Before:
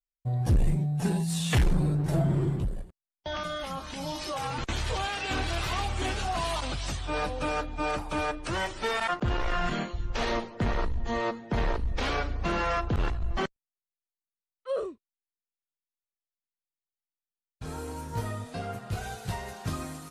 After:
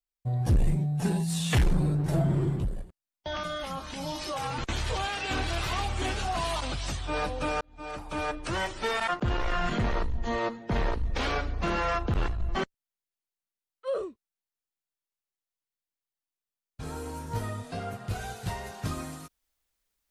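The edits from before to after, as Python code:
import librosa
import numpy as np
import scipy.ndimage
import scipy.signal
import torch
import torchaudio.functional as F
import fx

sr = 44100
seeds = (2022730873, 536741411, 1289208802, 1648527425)

y = fx.edit(x, sr, fx.fade_in_span(start_s=7.61, length_s=0.76),
    fx.cut(start_s=9.78, length_s=0.82), tone=tone)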